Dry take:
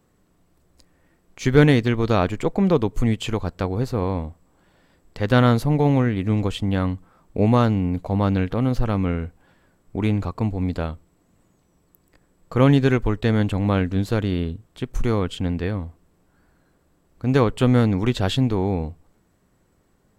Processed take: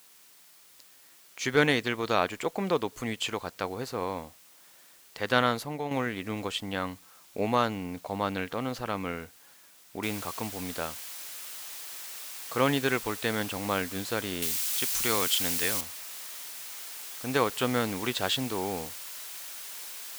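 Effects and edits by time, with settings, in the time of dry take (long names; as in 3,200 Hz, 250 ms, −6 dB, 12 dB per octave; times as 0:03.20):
0:05.36–0:05.91: fade out linear, to −7.5 dB
0:10.03: noise floor change −56 dB −41 dB
0:14.42–0:15.81: high-shelf EQ 2,300 Hz +12 dB
whole clip: high-pass filter 1,000 Hz 6 dB per octave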